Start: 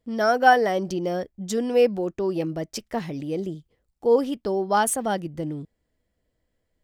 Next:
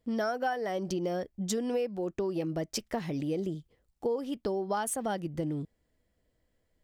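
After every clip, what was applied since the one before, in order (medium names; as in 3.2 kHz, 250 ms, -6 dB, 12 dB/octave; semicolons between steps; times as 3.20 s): compression 10:1, threshold -28 dBFS, peak gain reduction 17.5 dB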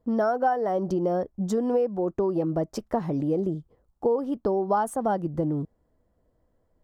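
resonant high shelf 1.6 kHz -12.5 dB, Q 1.5; trim +6 dB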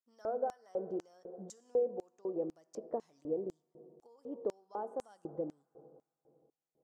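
reverberation RT60 2.8 s, pre-delay 3 ms, DRR 13 dB; LFO band-pass square 2 Hz 480–6900 Hz; trim -6.5 dB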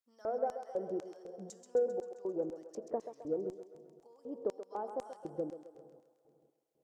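Chebyshev shaper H 3 -30 dB, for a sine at -22.5 dBFS; thinning echo 132 ms, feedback 65%, high-pass 470 Hz, level -8 dB; trim +1 dB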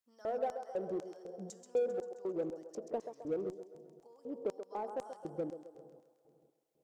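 peaking EQ 170 Hz +3 dB 0.3 oct; in parallel at -5.5 dB: hard clipper -37 dBFS, distortion -6 dB; on the sum: trim -3 dB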